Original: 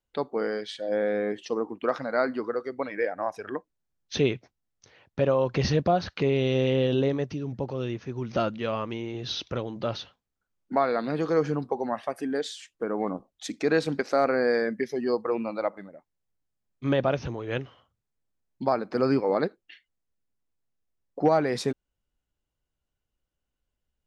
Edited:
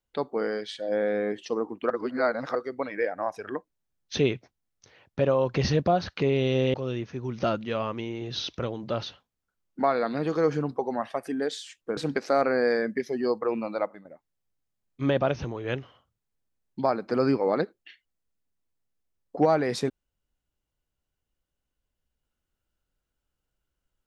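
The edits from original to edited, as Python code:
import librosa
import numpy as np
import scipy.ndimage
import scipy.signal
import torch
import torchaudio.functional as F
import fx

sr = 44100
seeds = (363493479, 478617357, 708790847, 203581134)

y = fx.edit(x, sr, fx.reverse_span(start_s=1.9, length_s=0.65),
    fx.cut(start_s=6.74, length_s=0.93),
    fx.cut(start_s=12.9, length_s=0.9),
    fx.fade_out_to(start_s=15.61, length_s=0.27, curve='qsin', floor_db=-11.0), tone=tone)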